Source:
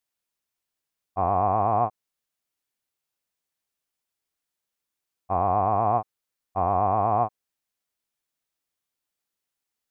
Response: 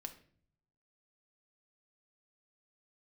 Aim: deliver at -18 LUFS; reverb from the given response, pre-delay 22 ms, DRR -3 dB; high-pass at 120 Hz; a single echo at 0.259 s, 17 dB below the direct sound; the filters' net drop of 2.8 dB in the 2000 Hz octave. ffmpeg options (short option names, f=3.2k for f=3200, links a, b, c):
-filter_complex "[0:a]highpass=120,equalizer=f=2k:t=o:g=-4,aecho=1:1:259:0.141,asplit=2[a][b];[1:a]atrim=start_sample=2205,adelay=22[c];[b][c]afir=irnorm=-1:irlink=0,volume=7dB[d];[a][d]amix=inputs=2:normalize=0,volume=2dB"